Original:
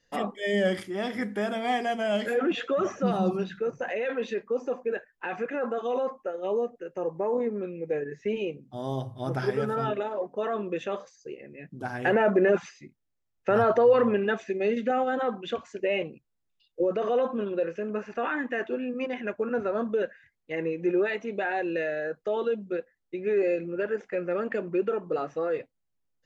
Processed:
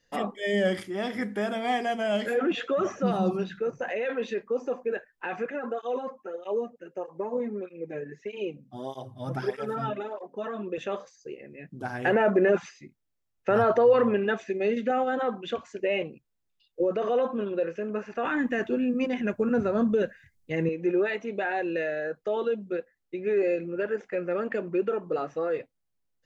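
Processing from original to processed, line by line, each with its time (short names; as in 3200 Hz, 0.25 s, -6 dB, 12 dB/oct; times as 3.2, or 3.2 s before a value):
5.51–10.78 tape flanging out of phase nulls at 1.6 Hz, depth 3 ms
18.25–20.69 tone controls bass +14 dB, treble +9 dB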